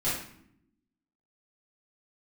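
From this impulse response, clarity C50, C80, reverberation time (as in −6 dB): 2.0 dB, 6.5 dB, 0.70 s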